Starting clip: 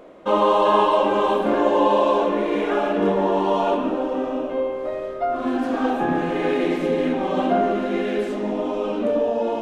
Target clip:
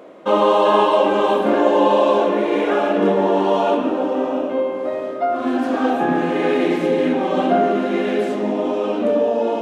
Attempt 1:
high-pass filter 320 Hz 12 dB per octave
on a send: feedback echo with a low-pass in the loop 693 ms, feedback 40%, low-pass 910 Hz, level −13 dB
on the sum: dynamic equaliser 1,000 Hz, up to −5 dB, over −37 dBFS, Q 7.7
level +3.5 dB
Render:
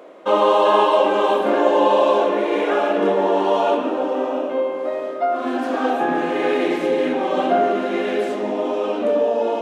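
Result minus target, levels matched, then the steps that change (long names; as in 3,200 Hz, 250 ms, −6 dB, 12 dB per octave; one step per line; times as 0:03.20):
125 Hz band −7.0 dB
change: high-pass filter 150 Hz 12 dB per octave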